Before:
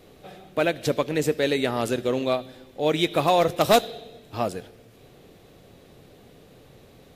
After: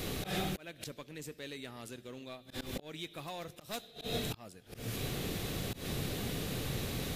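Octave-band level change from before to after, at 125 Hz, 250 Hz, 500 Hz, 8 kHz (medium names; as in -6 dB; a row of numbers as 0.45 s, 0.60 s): -5.5 dB, -12.0 dB, -19.0 dB, -6.0 dB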